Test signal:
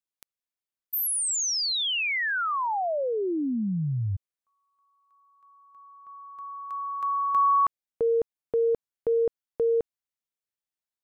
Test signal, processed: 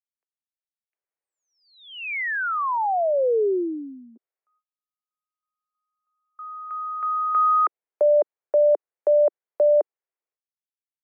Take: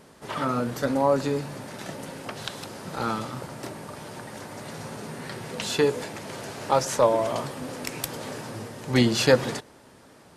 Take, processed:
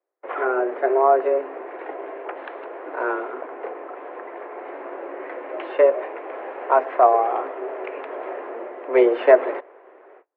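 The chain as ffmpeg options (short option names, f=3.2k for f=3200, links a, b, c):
-af "agate=range=-36dB:threshold=-41dB:ratio=16:release=485:detection=rms,highpass=f=250:t=q:w=0.5412,highpass=f=250:t=q:w=1.307,lowpass=f=2.3k:t=q:w=0.5176,lowpass=f=2.3k:t=q:w=0.7071,lowpass=f=2.3k:t=q:w=1.932,afreqshift=130,tiltshelf=f=690:g=6,volume=5.5dB"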